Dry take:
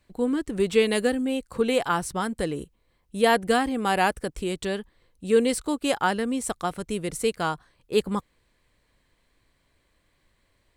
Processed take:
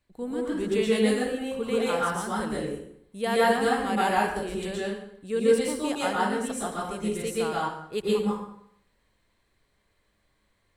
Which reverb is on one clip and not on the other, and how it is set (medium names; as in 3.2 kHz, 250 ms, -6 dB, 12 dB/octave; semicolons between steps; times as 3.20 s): plate-style reverb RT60 0.74 s, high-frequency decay 0.75×, pre-delay 105 ms, DRR -6.5 dB; trim -9 dB